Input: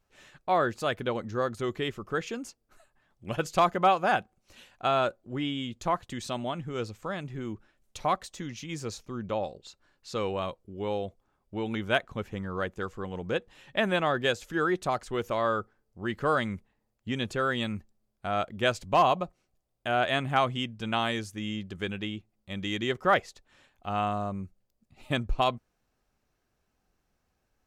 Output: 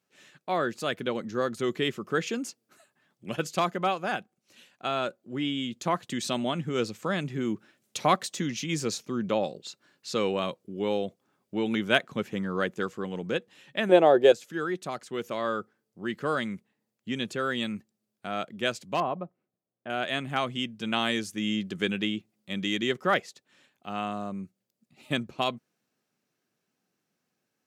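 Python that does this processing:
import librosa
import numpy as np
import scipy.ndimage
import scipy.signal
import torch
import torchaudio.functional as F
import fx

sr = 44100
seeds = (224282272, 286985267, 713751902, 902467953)

y = fx.band_shelf(x, sr, hz=540.0, db=15.0, octaves=1.7, at=(13.89, 14.32))
y = fx.lowpass(y, sr, hz=1300.0, slope=12, at=(19.0, 19.9))
y = fx.rider(y, sr, range_db=10, speed_s=2.0)
y = scipy.signal.sosfilt(scipy.signal.butter(4, 150.0, 'highpass', fs=sr, output='sos'), y)
y = fx.peak_eq(y, sr, hz=860.0, db=-6.5, octaves=1.6)
y = y * 10.0 ** (1.0 / 20.0)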